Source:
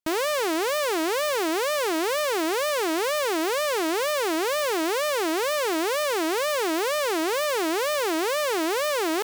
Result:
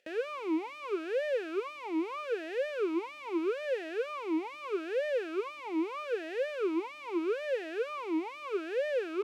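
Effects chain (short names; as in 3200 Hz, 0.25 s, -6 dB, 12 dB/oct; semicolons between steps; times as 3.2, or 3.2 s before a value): upward compressor, threshold -30 dBFS; vowel sweep e-u 0.79 Hz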